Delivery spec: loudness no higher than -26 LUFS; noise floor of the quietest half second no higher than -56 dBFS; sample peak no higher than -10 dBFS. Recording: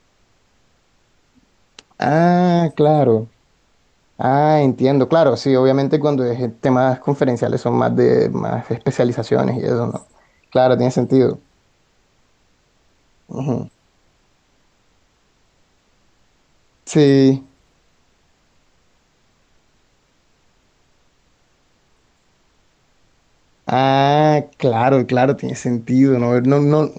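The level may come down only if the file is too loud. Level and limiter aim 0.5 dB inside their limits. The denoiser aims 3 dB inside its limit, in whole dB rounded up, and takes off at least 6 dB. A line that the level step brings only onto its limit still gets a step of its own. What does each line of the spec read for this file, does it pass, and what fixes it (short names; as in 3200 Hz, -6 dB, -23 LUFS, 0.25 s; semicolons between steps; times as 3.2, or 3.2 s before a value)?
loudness -16.5 LUFS: fail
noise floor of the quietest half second -60 dBFS: OK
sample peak -3.0 dBFS: fail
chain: gain -10 dB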